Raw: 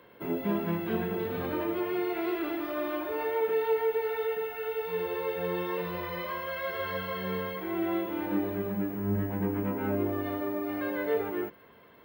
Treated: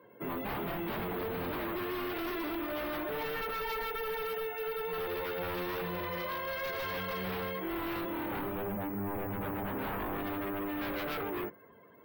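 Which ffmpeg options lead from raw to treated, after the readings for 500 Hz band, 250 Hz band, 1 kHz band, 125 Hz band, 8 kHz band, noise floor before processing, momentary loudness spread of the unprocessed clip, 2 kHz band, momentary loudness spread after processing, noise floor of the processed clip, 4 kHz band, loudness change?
-6.5 dB, -6.0 dB, -1.0 dB, -6.0 dB, no reading, -56 dBFS, 5 LU, -1.0 dB, 1 LU, -57 dBFS, +2.0 dB, -4.5 dB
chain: -af "aeval=exprs='0.0282*(abs(mod(val(0)/0.0282+3,4)-2)-1)':c=same,afftdn=nr=16:nf=-56"

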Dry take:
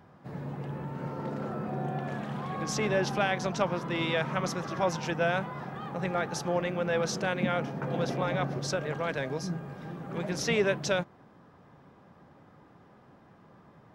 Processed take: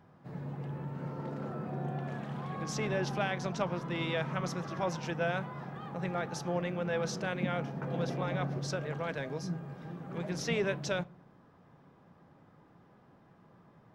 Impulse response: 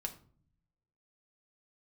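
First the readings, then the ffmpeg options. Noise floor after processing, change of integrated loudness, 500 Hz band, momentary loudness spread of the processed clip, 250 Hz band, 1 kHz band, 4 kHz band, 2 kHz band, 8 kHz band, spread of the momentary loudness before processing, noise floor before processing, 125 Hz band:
-61 dBFS, -4.5 dB, -5.0 dB, 8 LU, -3.5 dB, -5.5 dB, -5.5 dB, -5.0 dB, -6.0 dB, 10 LU, -57 dBFS, -1.5 dB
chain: -filter_complex "[0:a]asplit=2[s0][s1];[1:a]atrim=start_sample=2205,lowpass=8900,lowshelf=f=360:g=7[s2];[s1][s2]afir=irnorm=-1:irlink=0,volume=0.299[s3];[s0][s3]amix=inputs=2:normalize=0,volume=0.447"

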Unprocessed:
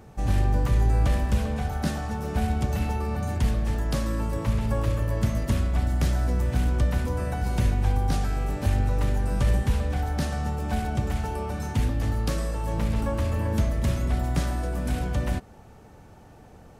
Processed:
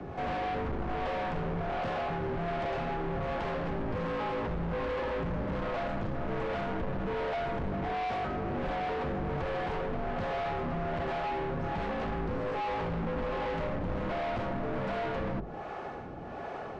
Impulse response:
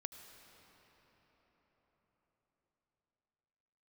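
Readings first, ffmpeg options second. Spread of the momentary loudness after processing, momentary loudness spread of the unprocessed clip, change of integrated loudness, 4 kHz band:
2 LU, 5 LU, -7.5 dB, -5.5 dB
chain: -filter_complex "[0:a]highpass=f=69:p=1,bandreject=f=50:t=h:w=6,bandreject=f=100:t=h:w=6,asplit=2[s0][s1];[s1]highpass=f=720:p=1,volume=22.4,asoftclip=type=tanh:threshold=0.211[s2];[s0][s2]amix=inputs=2:normalize=0,lowpass=f=1500:p=1,volume=0.501,acrossover=split=1200[s3][s4];[s4]acompressor=threshold=0.00891:ratio=6[s5];[s3][s5]amix=inputs=2:normalize=0,acrossover=split=440[s6][s7];[s6]aeval=exprs='val(0)*(1-0.7/2+0.7/2*cos(2*PI*1.3*n/s))':c=same[s8];[s7]aeval=exprs='val(0)*(1-0.7/2-0.7/2*cos(2*PI*1.3*n/s))':c=same[s9];[s8][s9]amix=inputs=2:normalize=0,afreqshift=22,volume=35.5,asoftclip=hard,volume=0.0282,afreqshift=-73,lowpass=3600"

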